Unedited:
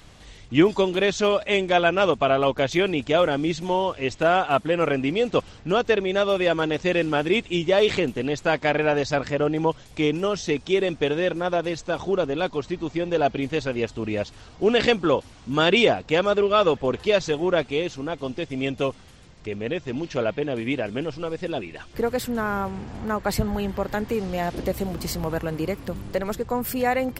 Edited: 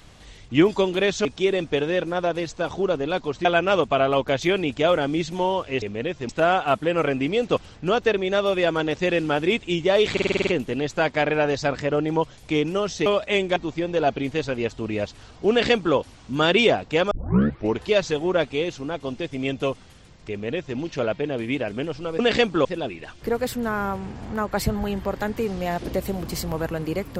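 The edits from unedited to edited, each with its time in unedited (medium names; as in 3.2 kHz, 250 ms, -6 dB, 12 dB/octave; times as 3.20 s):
1.25–1.75 s: swap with 10.54–12.74 s
7.95 s: stutter 0.05 s, 8 plays
14.68–15.14 s: copy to 21.37 s
16.29 s: tape start 0.68 s
19.48–19.95 s: copy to 4.12 s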